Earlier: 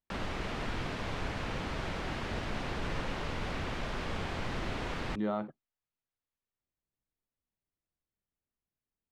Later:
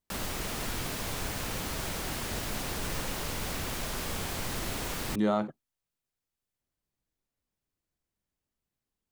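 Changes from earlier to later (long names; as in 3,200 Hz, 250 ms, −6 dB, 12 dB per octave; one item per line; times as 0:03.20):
speech +6.0 dB
master: remove low-pass filter 3,000 Hz 12 dB per octave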